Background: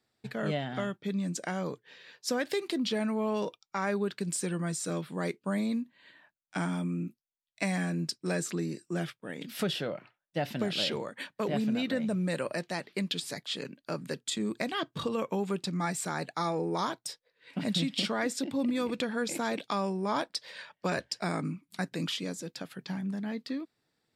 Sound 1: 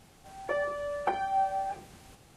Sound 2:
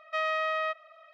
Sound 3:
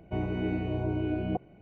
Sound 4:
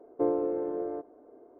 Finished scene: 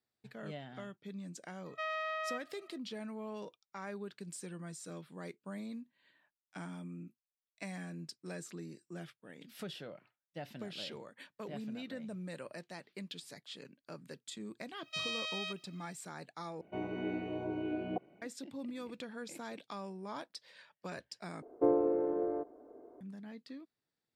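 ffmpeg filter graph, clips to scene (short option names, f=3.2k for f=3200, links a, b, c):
-filter_complex "[2:a]asplit=2[a][b];[0:a]volume=-13dB[c];[b]aexciter=amount=11.1:drive=8.3:freq=2.7k[d];[3:a]highpass=240[e];[c]asplit=3[f][g][h];[f]atrim=end=16.614[i];[e]atrim=end=1.61,asetpts=PTS-STARTPTS,volume=-4.5dB[j];[g]atrim=start=18.216:end=21.424[k];[4:a]atrim=end=1.59,asetpts=PTS-STARTPTS,volume=-1dB[l];[h]atrim=start=23.006[m];[a]atrim=end=1.13,asetpts=PTS-STARTPTS,volume=-8.5dB,afade=t=in:d=0.004:c=hsin,afade=t=out:st=1.126:d=0.004:c=hsin,adelay=1650[n];[d]atrim=end=1.13,asetpts=PTS-STARTPTS,volume=-18dB,afade=t=in:d=0.004:c=hsin,afade=t=out:st=1.126:d=0.004:c=hsin,adelay=14800[o];[i][j]acrossfade=d=0.004:c1=hsin:c2=hsin[p];[p][k]acrossfade=d=0.004:c1=hsin:c2=hsin[q];[q][l]acrossfade=d=0.004:c1=hsin:c2=hsin[r];[r][m]acrossfade=d=0.004:c1=hsin:c2=hsin[s];[s][n][o]amix=inputs=3:normalize=0"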